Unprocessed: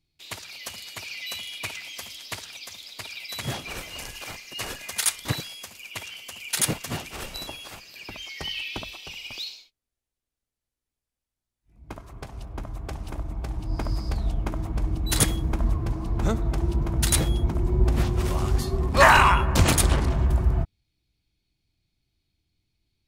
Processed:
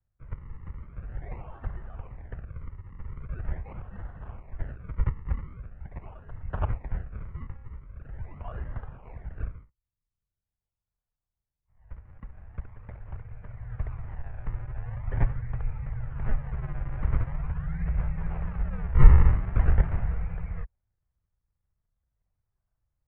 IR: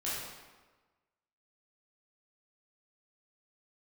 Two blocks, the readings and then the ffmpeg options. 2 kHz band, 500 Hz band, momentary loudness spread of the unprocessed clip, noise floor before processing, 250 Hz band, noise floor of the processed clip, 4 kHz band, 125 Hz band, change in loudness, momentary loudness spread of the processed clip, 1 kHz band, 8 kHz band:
-18.5 dB, -14.0 dB, 17 LU, under -85 dBFS, -9.0 dB, under -85 dBFS, under -35 dB, -2.5 dB, -5.0 dB, 18 LU, -16.5 dB, under -40 dB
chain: -af "acrusher=samples=34:mix=1:aa=0.000001:lfo=1:lforange=34:lforate=0.43,lowshelf=f=350:t=q:w=3:g=11.5,highpass=f=190:t=q:w=0.5412,highpass=f=190:t=q:w=1.307,lowpass=f=2300:t=q:w=0.5176,lowpass=f=2300:t=q:w=0.7071,lowpass=f=2300:t=q:w=1.932,afreqshift=-200,volume=0.398"

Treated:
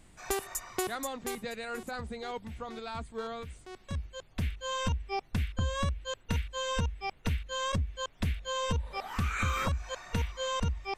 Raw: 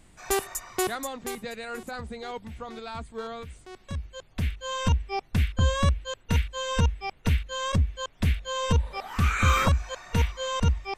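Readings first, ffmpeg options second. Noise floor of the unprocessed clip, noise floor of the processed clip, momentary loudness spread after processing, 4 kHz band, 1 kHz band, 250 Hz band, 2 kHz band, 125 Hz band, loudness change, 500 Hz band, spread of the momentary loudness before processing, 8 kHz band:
-56 dBFS, -58 dBFS, 8 LU, -4.0 dB, -5.0 dB, -6.0 dB, -5.5 dB, -8.0 dB, -6.5 dB, -4.5 dB, 14 LU, -4.5 dB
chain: -af "acompressor=threshold=0.0501:ratio=4,volume=0.794"

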